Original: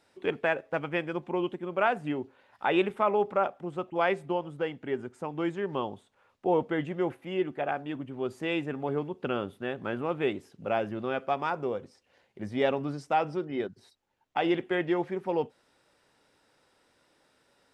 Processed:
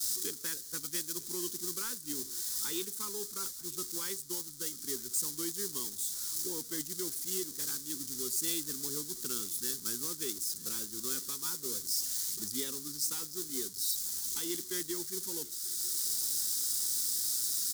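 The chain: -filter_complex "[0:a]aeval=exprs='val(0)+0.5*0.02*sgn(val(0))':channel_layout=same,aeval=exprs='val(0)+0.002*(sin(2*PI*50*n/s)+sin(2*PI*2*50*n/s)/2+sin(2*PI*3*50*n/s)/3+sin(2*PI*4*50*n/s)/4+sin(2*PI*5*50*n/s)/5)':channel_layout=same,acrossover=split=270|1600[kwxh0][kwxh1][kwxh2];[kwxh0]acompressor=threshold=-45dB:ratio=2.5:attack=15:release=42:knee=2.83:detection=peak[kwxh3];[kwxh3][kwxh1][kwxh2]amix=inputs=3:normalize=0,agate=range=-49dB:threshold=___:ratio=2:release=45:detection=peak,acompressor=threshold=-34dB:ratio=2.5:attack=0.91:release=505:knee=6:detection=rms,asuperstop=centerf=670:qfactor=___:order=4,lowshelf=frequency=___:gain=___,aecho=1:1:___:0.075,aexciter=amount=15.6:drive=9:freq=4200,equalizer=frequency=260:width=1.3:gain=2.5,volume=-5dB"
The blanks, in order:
-27dB, 0.97, 330, 3, 942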